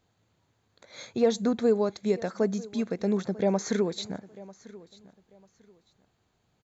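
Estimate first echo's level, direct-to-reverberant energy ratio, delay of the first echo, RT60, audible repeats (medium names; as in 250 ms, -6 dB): -20.0 dB, no reverb, 944 ms, no reverb, 2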